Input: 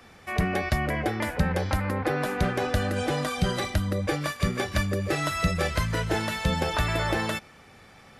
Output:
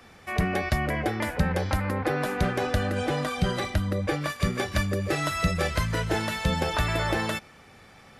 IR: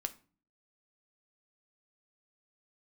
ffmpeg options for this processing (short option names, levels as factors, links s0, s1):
-filter_complex "[0:a]asettb=1/sr,asplit=3[s0][s1][s2];[s0]atrim=end=2.754[s3];[s1]atrim=start=2.75:end=4.3,asetpts=PTS-STARTPTS,afade=t=in:d=0.004:c=qsin,afade=t=out:st=1.546:d=0.004:c=qsin,bass=f=250:g=0,treble=f=4000:g=-4[s4];[s2]atrim=start=4.296[s5];[s3][s4]acrossfade=d=0.004:c1=hsin:c2=qsin[s6];[s6][s5]acrossfade=d=0.004:c1=qsin:c2=hsin"